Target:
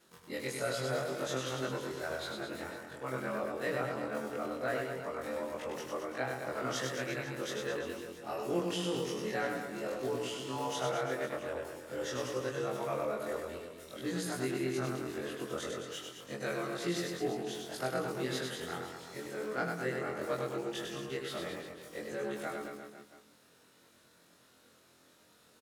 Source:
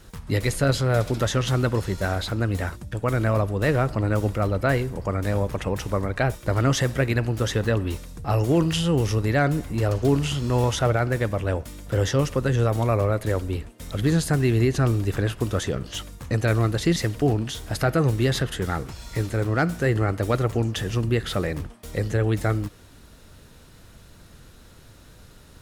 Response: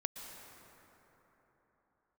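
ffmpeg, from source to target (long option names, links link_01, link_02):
-af "afftfilt=real='re':imag='-im':win_size=2048:overlap=0.75,highpass=280,aecho=1:1:100|215|347.2|499.3|674.2:0.631|0.398|0.251|0.158|0.1,volume=-7.5dB"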